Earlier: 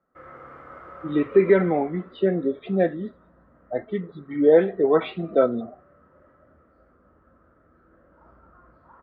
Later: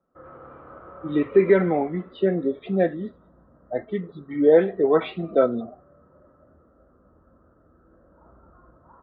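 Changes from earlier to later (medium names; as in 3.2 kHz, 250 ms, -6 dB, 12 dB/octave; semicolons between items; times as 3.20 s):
background: add boxcar filter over 19 samples; reverb: on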